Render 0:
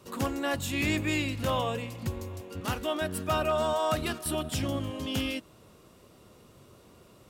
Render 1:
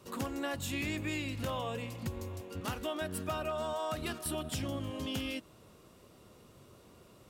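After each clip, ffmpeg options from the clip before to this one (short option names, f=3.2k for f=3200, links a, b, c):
-af "acompressor=threshold=-30dB:ratio=6,volume=-2.5dB"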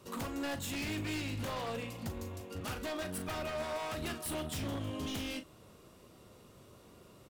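-filter_complex "[0:a]aeval=exprs='0.0224*(abs(mod(val(0)/0.0224+3,4)-2)-1)':c=same,asplit=2[a][b];[b]adelay=39,volume=-10dB[c];[a][c]amix=inputs=2:normalize=0"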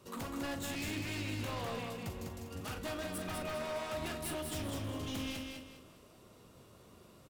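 -af "aecho=1:1:201|402|603|804:0.631|0.202|0.0646|0.0207,volume=-2.5dB"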